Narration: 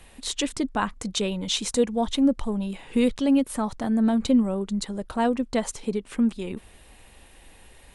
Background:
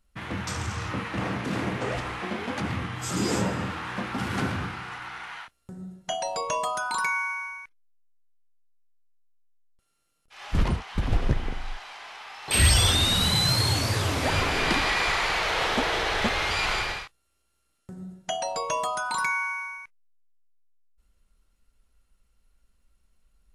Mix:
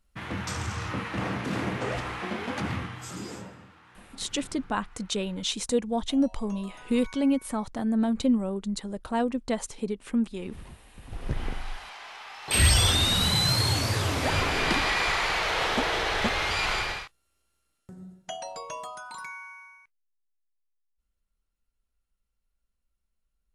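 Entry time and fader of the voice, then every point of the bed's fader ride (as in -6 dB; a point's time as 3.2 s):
3.95 s, -3.5 dB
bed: 2.75 s -1 dB
3.68 s -21.5 dB
11 s -21.5 dB
11.42 s -1 dB
17.44 s -1 dB
19.39 s -14 dB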